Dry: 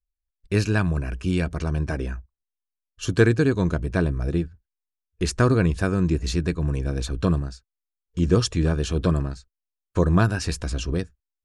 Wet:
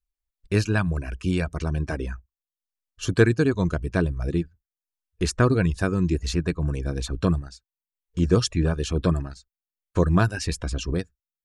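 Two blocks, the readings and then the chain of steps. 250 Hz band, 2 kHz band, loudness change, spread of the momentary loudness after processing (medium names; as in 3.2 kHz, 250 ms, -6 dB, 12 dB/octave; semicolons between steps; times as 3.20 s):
-1.0 dB, -0.5 dB, -1.0 dB, 10 LU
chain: reverb removal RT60 0.54 s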